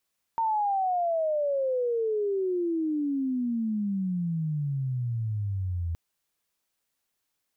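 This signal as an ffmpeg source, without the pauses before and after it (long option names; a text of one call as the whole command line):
ffmpeg -f lavfi -i "aevalsrc='pow(10,(-23-4*t/5.57)/20)*sin(2*PI*920*5.57/log(82/920)*(exp(log(82/920)*t/5.57)-1))':duration=5.57:sample_rate=44100" out.wav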